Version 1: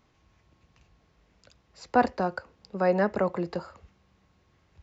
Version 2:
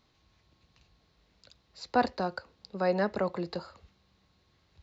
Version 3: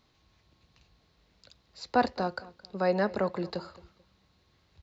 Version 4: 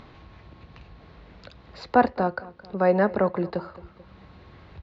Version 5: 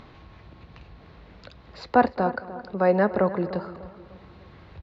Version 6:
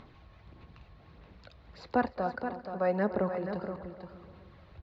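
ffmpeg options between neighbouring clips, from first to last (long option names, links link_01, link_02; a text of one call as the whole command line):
ffmpeg -i in.wav -af "equalizer=frequency=4100:width=2.3:gain=11.5,volume=-4dB" out.wav
ffmpeg -i in.wav -filter_complex "[0:a]asplit=2[link_01][link_02];[link_02]adelay=219,lowpass=frequency=4500:poles=1,volume=-19.5dB,asplit=2[link_03][link_04];[link_04]adelay=219,lowpass=frequency=4500:poles=1,volume=0.29[link_05];[link_01][link_03][link_05]amix=inputs=3:normalize=0,volume=1dB" out.wav
ffmpeg -i in.wav -filter_complex "[0:a]lowpass=2100,asplit=2[link_01][link_02];[link_02]acompressor=mode=upward:threshold=-34dB:ratio=2.5,volume=1dB[link_03];[link_01][link_03]amix=inputs=2:normalize=0" out.wav
ffmpeg -i in.wav -filter_complex "[0:a]asplit=2[link_01][link_02];[link_02]adelay=299,lowpass=frequency=2100:poles=1,volume=-14.5dB,asplit=2[link_03][link_04];[link_04]adelay=299,lowpass=frequency=2100:poles=1,volume=0.41,asplit=2[link_05][link_06];[link_06]adelay=299,lowpass=frequency=2100:poles=1,volume=0.41,asplit=2[link_07][link_08];[link_08]adelay=299,lowpass=frequency=2100:poles=1,volume=0.41[link_09];[link_01][link_03][link_05][link_07][link_09]amix=inputs=5:normalize=0" out.wav
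ffmpeg -i in.wav -af "aphaser=in_gain=1:out_gain=1:delay=1.7:decay=0.36:speed=1.6:type=sinusoidal,aecho=1:1:475:0.376,volume=-9dB" out.wav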